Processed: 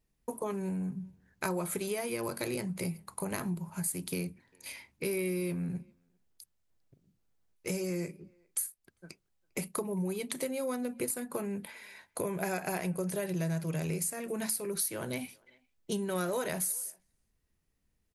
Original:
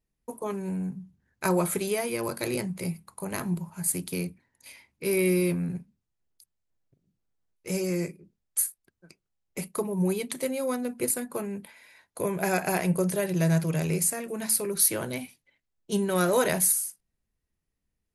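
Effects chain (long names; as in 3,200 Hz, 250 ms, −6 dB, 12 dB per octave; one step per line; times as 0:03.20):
downward compressor 4 to 1, threshold −37 dBFS, peak gain reduction 16.5 dB
far-end echo of a speakerphone 400 ms, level −29 dB
level +4 dB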